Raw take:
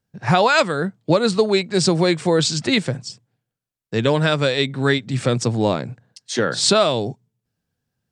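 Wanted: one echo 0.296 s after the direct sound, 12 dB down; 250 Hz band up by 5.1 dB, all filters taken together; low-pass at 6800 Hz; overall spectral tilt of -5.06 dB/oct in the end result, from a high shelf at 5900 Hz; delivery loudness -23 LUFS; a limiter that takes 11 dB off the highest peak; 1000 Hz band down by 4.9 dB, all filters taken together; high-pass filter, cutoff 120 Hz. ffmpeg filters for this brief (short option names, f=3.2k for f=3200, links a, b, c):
-af "highpass=120,lowpass=6.8k,equalizer=f=250:t=o:g=8,equalizer=f=1k:t=o:g=-7.5,highshelf=f=5.9k:g=-3,alimiter=limit=-13dB:level=0:latency=1,aecho=1:1:296:0.251,volume=-0.5dB"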